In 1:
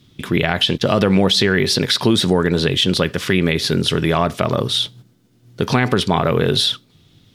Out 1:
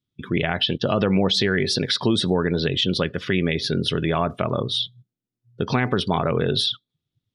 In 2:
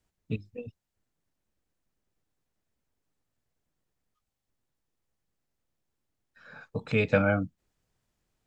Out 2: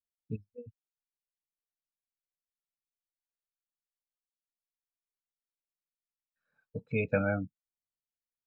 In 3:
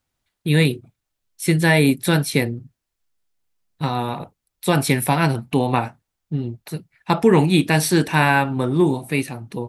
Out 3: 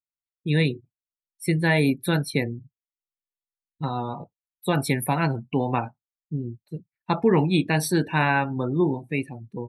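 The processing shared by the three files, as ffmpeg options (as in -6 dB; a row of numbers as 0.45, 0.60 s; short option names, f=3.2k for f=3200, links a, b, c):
-af "afftdn=nr=27:nf=-29,volume=-5dB"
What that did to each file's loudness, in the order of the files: -5.0, -5.0, -5.0 LU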